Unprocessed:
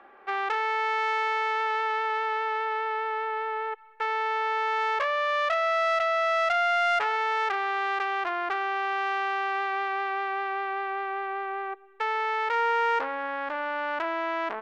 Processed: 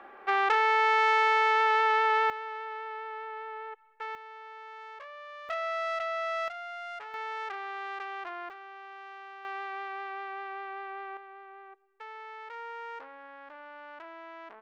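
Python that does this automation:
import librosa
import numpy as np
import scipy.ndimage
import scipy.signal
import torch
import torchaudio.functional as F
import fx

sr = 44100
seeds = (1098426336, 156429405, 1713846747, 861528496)

y = fx.gain(x, sr, db=fx.steps((0.0, 3.0), (2.3, -9.5), (4.15, -19.0), (5.49, -7.5), (6.48, -16.5), (7.14, -10.0), (8.5, -18.0), (9.45, -9.0), (11.17, -16.5)))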